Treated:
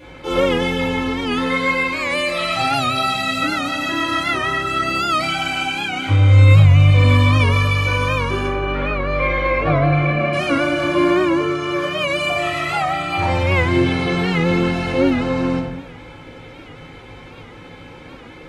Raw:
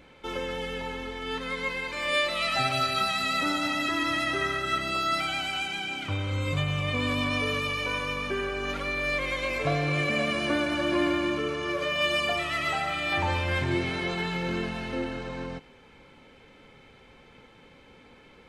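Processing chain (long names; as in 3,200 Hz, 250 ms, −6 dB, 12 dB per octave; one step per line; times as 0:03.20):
0:08.46–0:10.33: low-pass filter 2,200 Hz 12 dB per octave
speech leveller within 5 dB 2 s
convolution reverb RT60 0.95 s, pre-delay 4 ms, DRR −9 dB
wow of a warped record 78 rpm, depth 100 cents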